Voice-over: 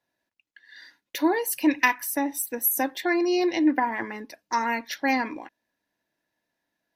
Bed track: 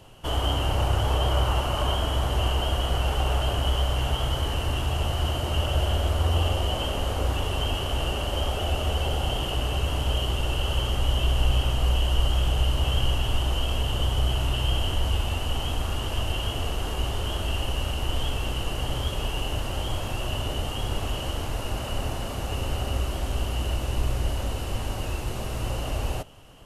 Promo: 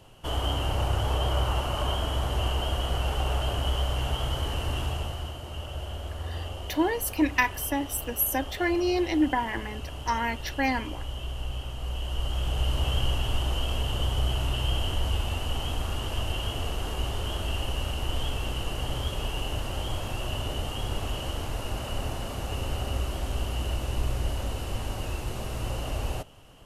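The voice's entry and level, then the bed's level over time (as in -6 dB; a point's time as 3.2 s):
5.55 s, -2.5 dB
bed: 4.85 s -3 dB
5.37 s -11.5 dB
11.75 s -11.5 dB
12.75 s -2.5 dB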